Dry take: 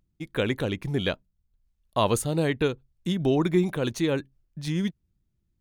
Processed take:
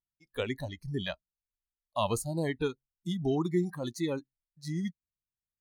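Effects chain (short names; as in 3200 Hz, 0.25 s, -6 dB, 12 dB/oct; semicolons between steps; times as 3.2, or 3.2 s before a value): spectral noise reduction 23 dB; wow and flutter 22 cents; gain -6 dB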